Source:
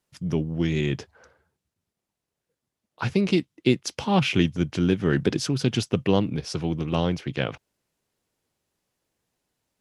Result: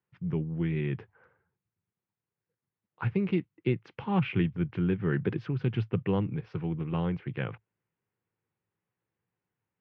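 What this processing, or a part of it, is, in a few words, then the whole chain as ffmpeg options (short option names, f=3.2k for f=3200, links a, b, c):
bass cabinet: -af "highpass=64,equalizer=f=69:t=q:w=4:g=-10,equalizer=f=110:t=q:w=4:g=8,equalizer=f=170:t=q:w=4:g=3,equalizer=f=260:t=q:w=4:g=-6,equalizer=f=630:t=q:w=4:g=-9,lowpass=f=2.4k:w=0.5412,lowpass=f=2.4k:w=1.3066,volume=-6dB"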